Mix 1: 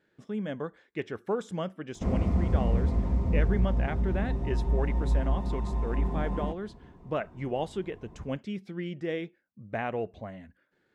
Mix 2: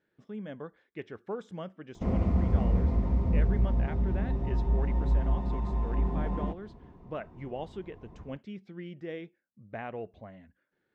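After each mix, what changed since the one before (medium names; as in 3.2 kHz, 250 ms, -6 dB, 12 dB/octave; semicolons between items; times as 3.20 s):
speech -6.5 dB; master: add peaking EQ 10 kHz -14.5 dB 1 oct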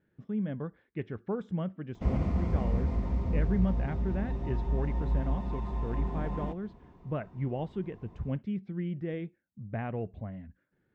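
speech: add tone controls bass +13 dB, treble -12 dB; background: add tilt shelf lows -3.5 dB, about 1.4 kHz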